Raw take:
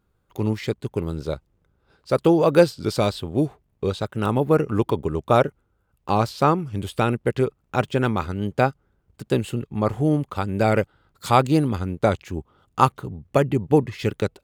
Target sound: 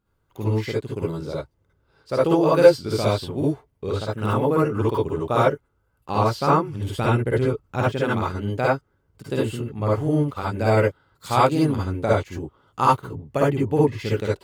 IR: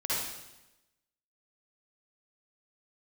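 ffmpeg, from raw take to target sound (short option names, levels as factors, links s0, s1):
-filter_complex "[0:a]asettb=1/sr,asplit=3[s0][s1][s2];[s0]atrim=end=6.954[s3];[s1]atrim=start=6.95:end=7.83,asetpts=PTS-STARTPTS,afade=t=in:d=0.004:c=qsin,afade=t=out:st=0.876:d=0.004:c=qsin,lowshelf=f=120:g=11[s4];[s2]atrim=start=7.826[s5];[s3][s4]acrossfade=d=0.004:c1=hsin:c2=qsin[s6];[s6][s5]acrossfade=d=0.004:c1=qsin:c2=hsin[s7];[1:a]atrim=start_sample=2205,atrim=end_sample=3528[s8];[s7][s8]afir=irnorm=-1:irlink=0,volume=0.631"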